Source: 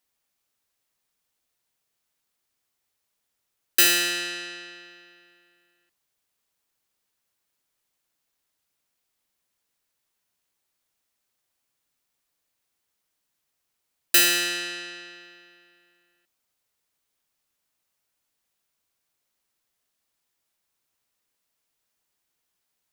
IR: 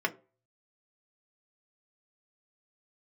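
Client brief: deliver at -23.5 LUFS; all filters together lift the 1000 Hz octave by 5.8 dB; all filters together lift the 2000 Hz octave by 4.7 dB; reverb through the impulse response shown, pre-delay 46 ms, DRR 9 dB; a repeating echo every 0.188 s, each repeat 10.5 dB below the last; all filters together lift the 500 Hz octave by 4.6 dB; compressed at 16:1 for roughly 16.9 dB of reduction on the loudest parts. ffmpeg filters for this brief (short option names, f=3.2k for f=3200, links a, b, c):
-filter_complex "[0:a]equalizer=f=500:t=o:g=5.5,equalizer=f=1k:t=o:g=6,equalizer=f=2k:t=o:g=4,acompressor=threshold=-28dB:ratio=16,aecho=1:1:188|376|564:0.299|0.0896|0.0269,asplit=2[a][b];[1:a]atrim=start_sample=2205,adelay=46[c];[b][c]afir=irnorm=-1:irlink=0,volume=-18dB[d];[a][d]amix=inputs=2:normalize=0,volume=9.5dB"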